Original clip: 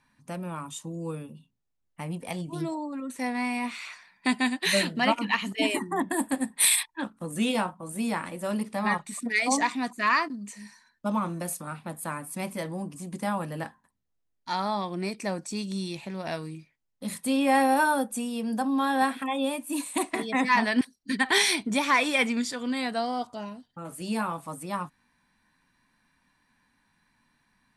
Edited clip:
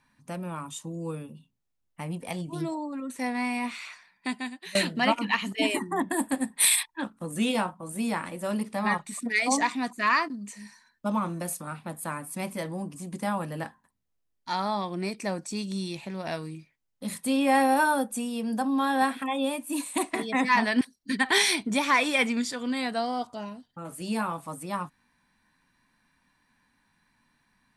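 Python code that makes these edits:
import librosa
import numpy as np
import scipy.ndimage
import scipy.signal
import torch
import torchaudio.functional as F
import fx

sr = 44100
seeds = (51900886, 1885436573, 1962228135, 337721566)

y = fx.edit(x, sr, fx.fade_out_to(start_s=3.71, length_s=1.04, floor_db=-21.0), tone=tone)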